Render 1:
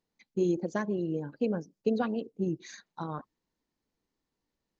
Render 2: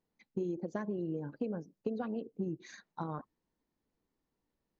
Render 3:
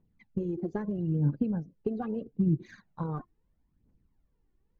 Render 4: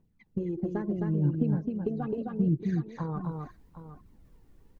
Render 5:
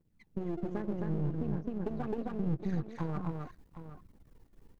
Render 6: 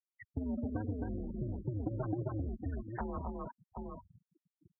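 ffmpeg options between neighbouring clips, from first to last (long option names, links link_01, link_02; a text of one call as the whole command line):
ffmpeg -i in.wav -af "highshelf=frequency=2500:gain=-10,acompressor=threshold=-34dB:ratio=6,volume=1dB" out.wav
ffmpeg -i in.wav -af "bass=frequency=250:gain=15,treble=frequency=4000:gain=-13,aphaser=in_gain=1:out_gain=1:delay=2.9:decay=0.6:speed=0.77:type=triangular,volume=-1dB" out.wav
ffmpeg -i in.wav -af "areverse,acompressor=mode=upward:threshold=-44dB:ratio=2.5,areverse,aecho=1:1:262|764:0.668|0.224" out.wav
ffmpeg -i in.wav -af "aeval=exprs='if(lt(val(0),0),0.251*val(0),val(0))':channel_layout=same,alimiter=limit=-24dB:level=0:latency=1:release=147,volume=1dB" out.wav
ffmpeg -i in.wav -af "acompressor=threshold=-41dB:ratio=4,highpass=frequency=200:width_type=q:width=0.5412,highpass=frequency=200:width_type=q:width=1.307,lowpass=frequency=3400:width_type=q:width=0.5176,lowpass=frequency=3400:width_type=q:width=0.7071,lowpass=frequency=3400:width_type=q:width=1.932,afreqshift=-110,afftfilt=real='re*gte(hypot(re,im),0.00355)':imag='im*gte(hypot(re,im),0.00355)':win_size=1024:overlap=0.75,volume=10dB" out.wav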